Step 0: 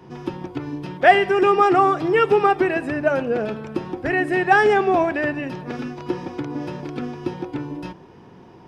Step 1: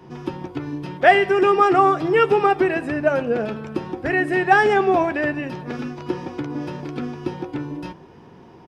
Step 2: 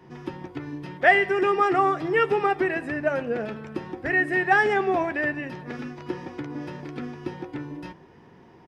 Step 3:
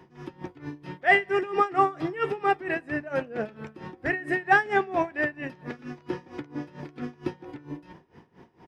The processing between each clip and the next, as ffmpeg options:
ffmpeg -i in.wav -filter_complex "[0:a]asplit=2[link_01][link_02];[link_02]adelay=13,volume=-13dB[link_03];[link_01][link_03]amix=inputs=2:normalize=0" out.wav
ffmpeg -i in.wav -af "equalizer=frequency=1900:width_type=o:width=0.38:gain=7,volume=-6dB" out.wav
ffmpeg -i in.wav -af "aeval=exprs='val(0)*pow(10,-19*(0.5-0.5*cos(2*PI*4.4*n/s))/20)':channel_layout=same,volume=2dB" out.wav

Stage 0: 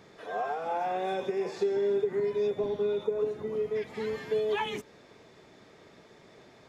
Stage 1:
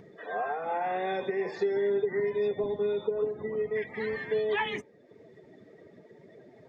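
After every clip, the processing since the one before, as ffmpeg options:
ffmpeg -i in.wav -af "afftdn=noise_reduction=20:noise_floor=-49,equalizer=frequency=1900:width_type=o:width=0.28:gain=12.5,acompressor=mode=upward:threshold=-45dB:ratio=2.5" out.wav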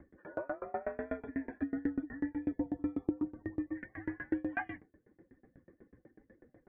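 ffmpeg -i in.wav -af "highpass=frequency=150:width_type=q:width=0.5412,highpass=frequency=150:width_type=q:width=1.307,lowpass=frequency=2200:width_type=q:width=0.5176,lowpass=frequency=2200:width_type=q:width=0.7071,lowpass=frequency=2200:width_type=q:width=1.932,afreqshift=-120,aeval=exprs='val(0)*pow(10,-29*if(lt(mod(8.1*n/s,1),2*abs(8.1)/1000),1-mod(8.1*n/s,1)/(2*abs(8.1)/1000),(mod(8.1*n/s,1)-2*abs(8.1)/1000)/(1-2*abs(8.1)/1000))/20)':channel_layout=same" out.wav

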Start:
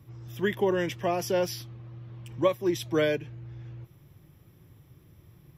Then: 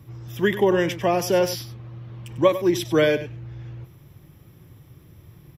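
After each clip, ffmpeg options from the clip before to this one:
ffmpeg -i in.wav -af "aecho=1:1:97:0.224,volume=6.5dB" out.wav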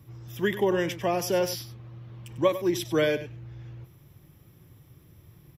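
ffmpeg -i in.wav -af "highshelf=frequency=5100:gain=4,volume=-5.5dB" out.wav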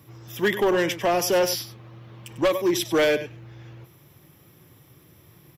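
ffmpeg -i in.wav -af "highpass=frequency=300:poles=1,volume=23dB,asoftclip=hard,volume=-23dB,volume=7dB" out.wav

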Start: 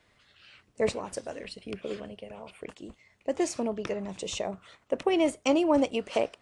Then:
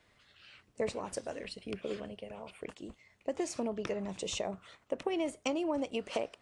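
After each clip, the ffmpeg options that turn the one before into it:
ffmpeg -i in.wav -af "acompressor=threshold=-28dB:ratio=6,volume=-2dB" out.wav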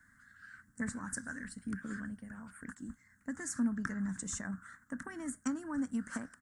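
ffmpeg -i in.wav -af "firequalizer=gain_entry='entry(150,0);entry(250,7);entry(370,-20);entry(610,-21);entry(1600,14);entry(2500,-25);entry(7400,5)':delay=0.05:min_phase=1,volume=1dB" out.wav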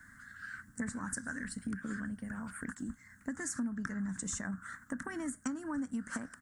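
ffmpeg -i in.wav -af "acompressor=threshold=-46dB:ratio=3,volume=8.5dB" out.wav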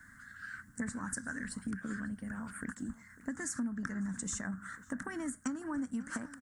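ffmpeg -i in.wav -filter_complex "[0:a]asplit=2[link_01][link_02];[link_02]adelay=548.1,volume=-17dB,highshelf=frequency=4000:gain=-12.3[link_03];[link_01][link_03]amix=inputs=2:normalize=0" out.wav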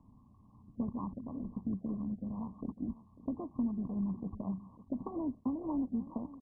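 ffmpeg -i in.wav -af "volume=2.5dB" -ar 24000 -c:a mp2 -b:a 8k out.mp2

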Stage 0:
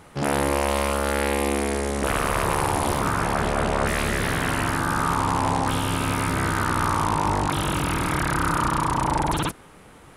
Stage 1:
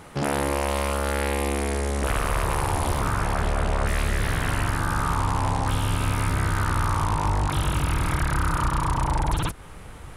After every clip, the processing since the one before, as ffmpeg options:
ffmpeg -i in.wav -af "asubboost=boost=4:cutoff=110,acompressor=threshold=-29dB:ratio=2,volume=3.5dB" out.wav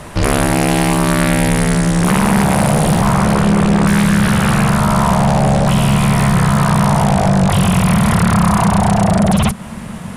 ffmpeg -i in.wav -af "afreqshift=-240,aeval=exprs='0.355*(cos(1*acos(clip(val(0)/0.355,-1,1)))-cos(1*PI/2))+0.0708*(cos(5*acos(clip(val(0)/0.355,-1,1)))-cos(5*PI/2))':channel_layout=same,volume=7dB" out.wav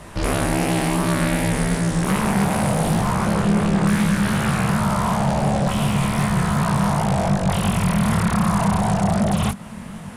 ffmpeg -i in.wav -af "flanger=delay=18:depth=7.4:speed=2.7,volume=-4dB" out.wav

